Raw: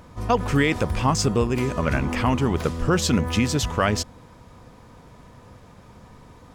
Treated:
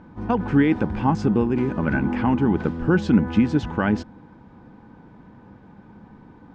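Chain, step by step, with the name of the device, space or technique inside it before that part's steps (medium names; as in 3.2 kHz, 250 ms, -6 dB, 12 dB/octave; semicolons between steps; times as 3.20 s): inside a cardboard box (low-pass 3 kHz 12 dB/octave; small resonant body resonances 210/300/820/1500 Hz, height 13 dB, ringing for 35 ms); trim -7 dB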